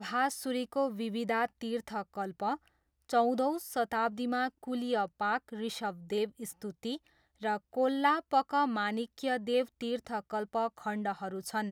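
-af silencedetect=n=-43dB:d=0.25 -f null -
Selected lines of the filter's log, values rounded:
silence_start: 2.56
silence_end: 3.09 | silence_duration: 0.54
silence_start: 6.97
silence_end: 7.42 | silence_duration: 0.45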